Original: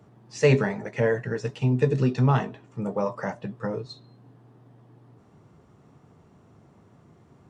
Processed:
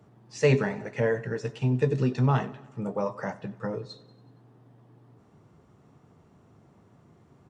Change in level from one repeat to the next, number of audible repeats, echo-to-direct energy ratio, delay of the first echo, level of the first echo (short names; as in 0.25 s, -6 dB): -4.5 dB, 4, -18.5 dB, 93 ms, -20.5 dB